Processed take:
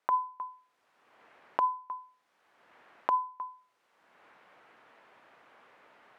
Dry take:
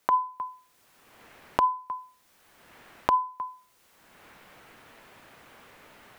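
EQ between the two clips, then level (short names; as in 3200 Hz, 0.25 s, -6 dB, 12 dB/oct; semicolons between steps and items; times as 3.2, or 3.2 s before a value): band-pass 950 Hz, Q 0.57; -4.5 dB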